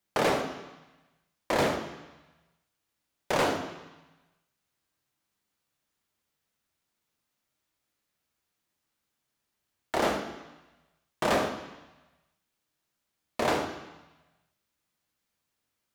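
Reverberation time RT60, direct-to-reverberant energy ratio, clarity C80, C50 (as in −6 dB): 1.1 s, 5.0 dB, 9.5 dB, 8.0 dB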